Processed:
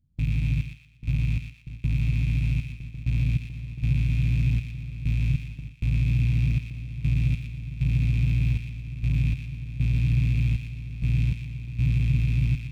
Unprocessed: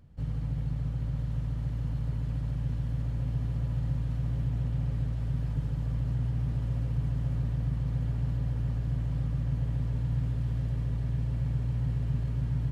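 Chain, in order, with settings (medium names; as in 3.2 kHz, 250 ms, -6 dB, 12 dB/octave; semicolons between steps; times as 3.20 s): rattle on loud lows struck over -37 dBFS, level -29 dBFS; bass shelf 390 Hz +5 dB; in parallel at -6.5 dB: hard clipper -23.5 dBFS, distortion -12 dB; on the sum: trance gate "xxxx...xx...x" 98 bpm -12 dB; gate with hold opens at -27 dBFS; high-order bell 860 Hz -12 dB 2.6 oct; band-stop 2.9 kHz, Q 7.5; on a send: feedback echo behind a high-pass 119 ms, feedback 37%, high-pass 1.6 kHz, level -4.5 dB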